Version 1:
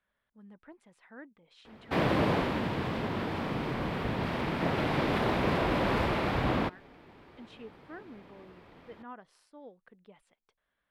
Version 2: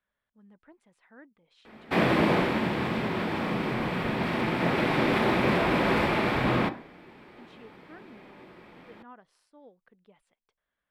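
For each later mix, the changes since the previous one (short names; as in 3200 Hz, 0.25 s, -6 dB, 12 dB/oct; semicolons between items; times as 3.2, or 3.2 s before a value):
speech -3.5 dB; reverb: on, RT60 0.50 s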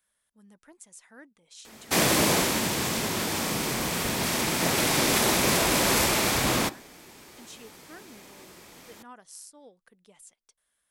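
background: send -8.0 dB; master: remove air absorption 440 m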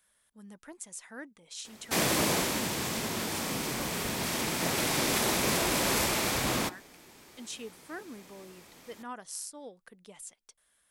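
speech +6.0 dB; background -5.0 dB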